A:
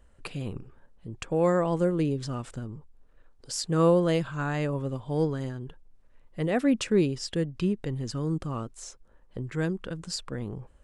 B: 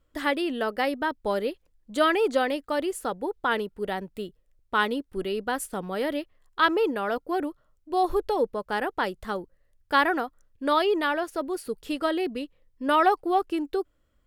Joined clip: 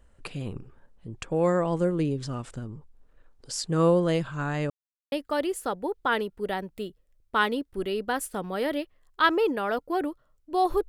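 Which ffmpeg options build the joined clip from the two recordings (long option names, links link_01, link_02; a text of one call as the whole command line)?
ffmpeg -i cue0.wav -i cue1.wav -filter_complex "[0:a]apad=whole_dur=10.88,atrim=end=10.88,asplit=2[link_01][link_02];[link_01]atrim=end=4.7,asetpts=PTS-STARTPTS,afade=type=out:start_time=4.696:duration=0.004:curve=hsin[link_03];[link_02]atrim=start=4.7:end=5.12,asetpts=PTS-STARTPTS,volume=0[link_04];[1:a]atrim=start=2.51:end=8.27,asetpts=PTS-STARTPTS,afade=type=in:duration=0.004:curve=hsin[link_05];[link_03][link_04][link_05]concat=n=3:v=0:a=1" out.wav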